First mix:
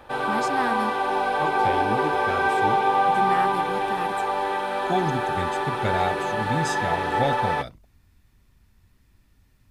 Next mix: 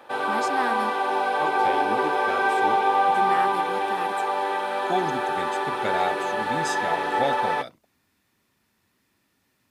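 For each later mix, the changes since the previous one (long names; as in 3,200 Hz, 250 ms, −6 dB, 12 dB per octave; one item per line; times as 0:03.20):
master: add high-pass filter 260 Hz 12 dB per octave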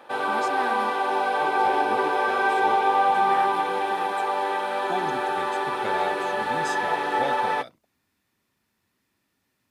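speech −4.5 dB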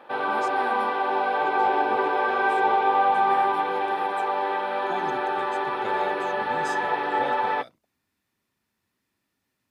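speech −4.0 dB
background: add moving average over 6 samples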